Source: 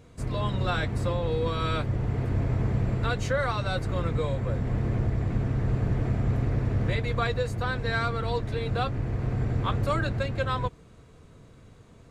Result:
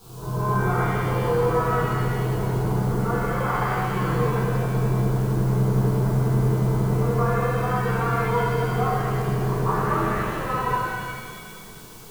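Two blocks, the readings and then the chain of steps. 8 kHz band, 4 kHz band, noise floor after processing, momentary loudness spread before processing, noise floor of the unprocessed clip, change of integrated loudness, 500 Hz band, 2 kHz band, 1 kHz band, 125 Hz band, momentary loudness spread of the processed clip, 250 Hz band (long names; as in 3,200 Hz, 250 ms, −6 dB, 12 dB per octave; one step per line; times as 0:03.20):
can't be measured, −2.0 dB, −40 dBFS, 3 LU, −53 dBFS, +5.0 dB, +6.0 dB, +4.0 dB, +8.5 dB, +4.5 dB, 5 LU, +6.0 dB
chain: low-pass filter 1,600 Hz 24 dB per octave
low-shelf EQ 130 Hz −10 dB
background noise pink −56 dBFS
bit reduction 9 bits
phaser with its sweep stopped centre 380 Hz, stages 8
backwards echo 171 ms −11 dB
reverb with rising layers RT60 1.9 s, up +7 semitones, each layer −8 dB, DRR −10 dB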